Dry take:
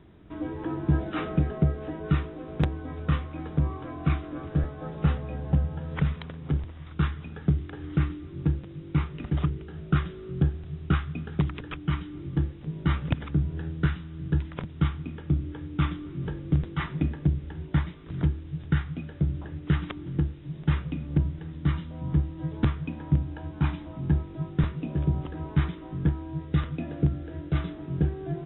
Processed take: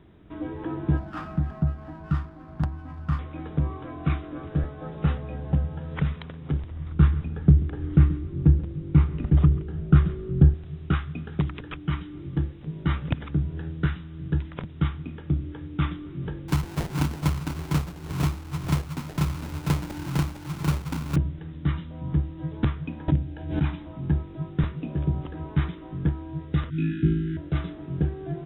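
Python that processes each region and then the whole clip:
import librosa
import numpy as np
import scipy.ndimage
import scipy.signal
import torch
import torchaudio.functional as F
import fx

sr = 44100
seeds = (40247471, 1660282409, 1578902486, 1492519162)

y = fx.chain(x, sr, fx.fixed_phaser(hz=1100.0, stages=4),
    fx.running_max(window=5), at=(0.97, 3.19))
y = fx.chain(y, sr, fx.tilt_eq(slope=-2.5),
    fx.echo_single(ms=136, db=-17.0), at=(6.71, 10.54))
y = fx.chain(y, sr, fx.sample_hold(seeds[0], rate_hz=1200.0, jitter_pct=20),
    fx.echo_single(ms=455, db=-6.0),
    fx.band_squash(depth_pct=40), at=(16.48, 21.16))
y = fx.chain(y, sr, fx.peak_eq(hz=1100.0, db=-13.0, octaves=0.45),
    fx.pre_swell(db_per_s=80.0), at=(23.08, 23.66))
y = fx.chain(y, sr, fx.brickwall_bandstop(low_hz=400.0, high_hz=1300.0),
    fx.room_flutter(wall_m=3.2, rt60_s=0.99), at=(26.7, 27.37))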